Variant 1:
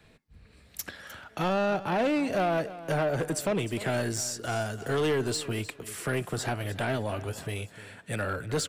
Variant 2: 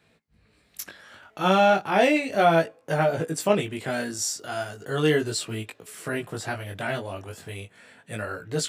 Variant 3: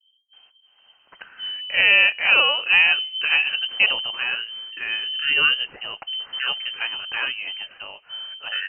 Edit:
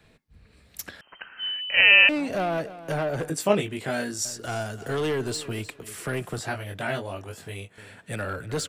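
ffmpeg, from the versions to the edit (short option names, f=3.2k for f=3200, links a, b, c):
-filter_complex "[1:a]asplit=2[a][b];[0:a]asplit=4[c][d][e][f];[c]atrim=end=1.012[g];[2:a]atrim=start=1.008:end=2.092[h];[d]atrim=start=2.088:end=3.302[i];[a]atrim=start=3.298:end=4.252[j];[e]atrim=start=4.248:end=6.392[k];[b]atrim=start=6.388:end=7.782[l];[f]atrim=start=7.778[m];[g][h]acrossfade=d=0.004:c1=hsin:c2=hsin[n];[n][i]acrossfade=d=0.004:c1=hsin:c2=hsin[o];[o][j]acrossfade=d=0.004:c1=hsin:c2=hsin[p];[p][k]acrossfade=d=0.004:c1=hsin:c2=hsin[q];[q][l]acrossfade=d=0.004:c1=hsin:c2=hsin[r];[r][m]acrossfade=d=0.004:c1=hsin:c2=hsin"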